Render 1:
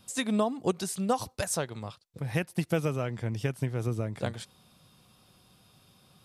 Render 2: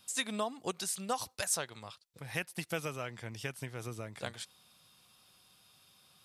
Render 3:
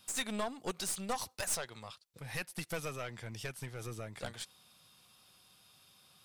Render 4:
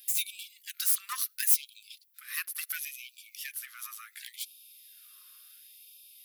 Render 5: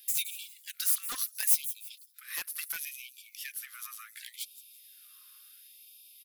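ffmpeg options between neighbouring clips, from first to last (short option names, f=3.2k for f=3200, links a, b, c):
-af "tiltshelf=f=730:g=-7,volume=-6.5dB"
-af "aeval=exprs='(tanh(35.5*val(0)+0.5)-tanh(0.5))/35.5':c=same,volume=2.5dB"
-af "aexciter=amount=8.1:drive=4.4:freq=11k,afftfilt=real='re*gte(b*sr/1024,990*pow(2300/990,0.5+0.5*sin(2*PI*0.71*pts/sr)))':imag='im*gte(b*sr/1024,990*pow(2300/990,0.5+0.5*sin(2*PI*0.71*pts/sr)))':win_size=1024:overlap=0.75,volume=4dB"
-filter_complex "[0:a]acrossover=split=2500|5500[a][b][c];[a]aeval=exprs='(mod(42.2*val(0)+1,2)-1)/42.2':c=same[d];[c]aecho=1:1:168|336|504:0.251|0.0779|0.0241[e];[d][b][e]amix=inputs=3:normalize=0,volume=-1dB"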